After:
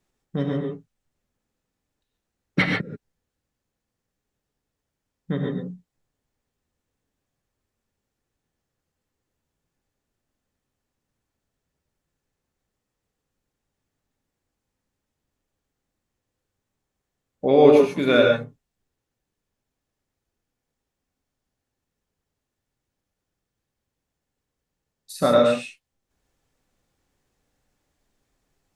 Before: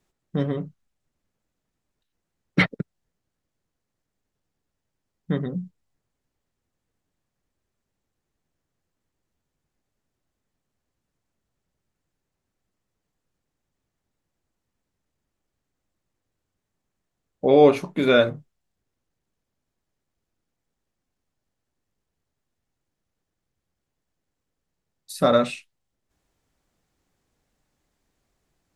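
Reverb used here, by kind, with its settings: non-linear reverb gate 0.16 s rising, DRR 1 dB; gain -1.5 dB

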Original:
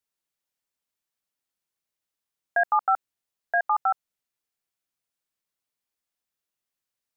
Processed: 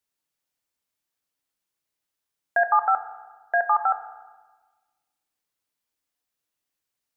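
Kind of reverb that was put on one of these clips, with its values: FDN reverb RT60 1.3 s, low-frequency decay 1.35×, high-frequency decay 0.8×, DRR 8 dB; gain +2 dB

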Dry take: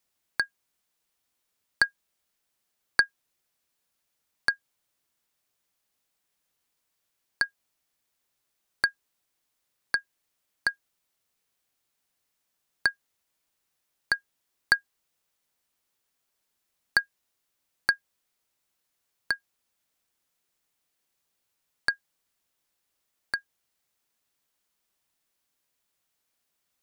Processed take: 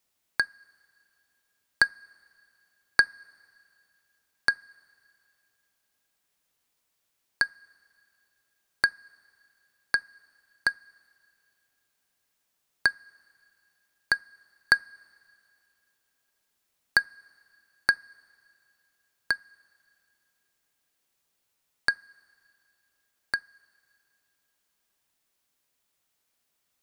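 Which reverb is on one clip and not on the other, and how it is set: two-slope reverb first 0.25 s, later 2.6 s, from -17 dB, DRR 19.5 dB; gain +1.5 dB

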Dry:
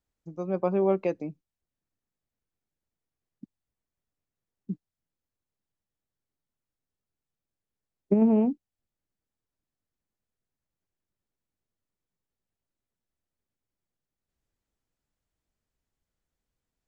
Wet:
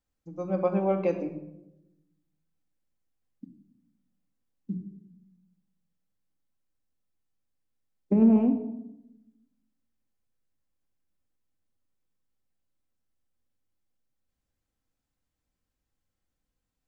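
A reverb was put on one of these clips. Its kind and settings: shoebox room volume 2800 m³, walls furnished, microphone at 2.1 m; gain -1.5 dB

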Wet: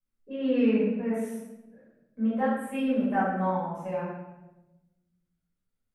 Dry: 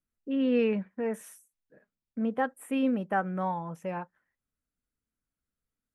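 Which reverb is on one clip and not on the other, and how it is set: shoebox room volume 460 m³, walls mixed, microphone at 5.4 m; gain -11.5 dB

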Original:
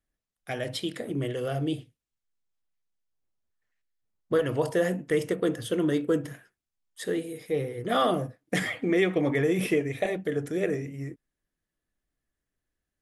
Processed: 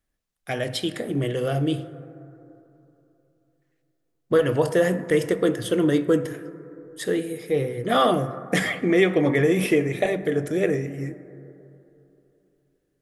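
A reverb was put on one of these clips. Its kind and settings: plate-style reverb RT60 3.2 s, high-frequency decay 0.25×, DRR 13 dB; gain +5 dB

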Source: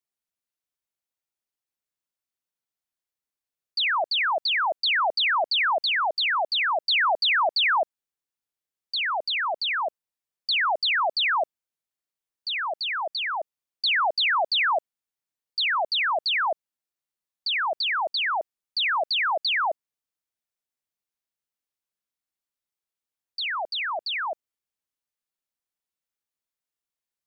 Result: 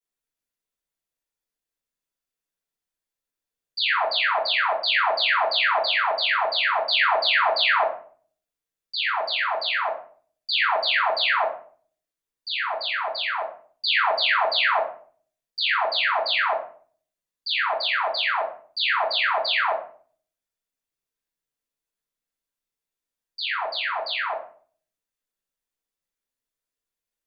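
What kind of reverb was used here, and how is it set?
shoebox room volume 42 m³, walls mixed, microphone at 1.9 m; gain -8 dB

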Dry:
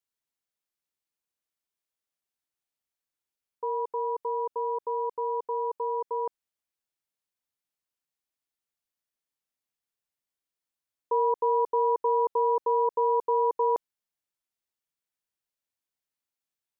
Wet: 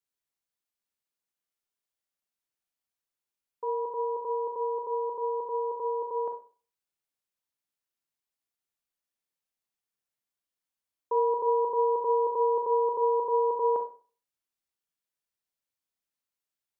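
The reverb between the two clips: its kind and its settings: Schroeder reverb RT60 0.41 s, combs from 32 ms, DRR 5 dB; gain -2.5 dB

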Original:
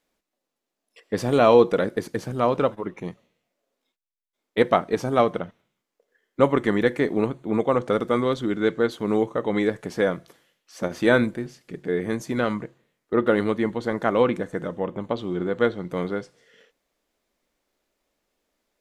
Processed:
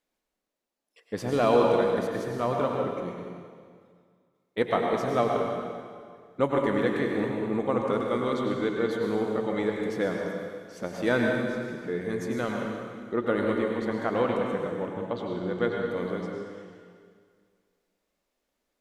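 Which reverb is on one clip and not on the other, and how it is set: plate-style reverb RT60 2 s, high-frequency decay 0.9×, pre-delay 85 ms, DRR 0 dB; gain -7 dB

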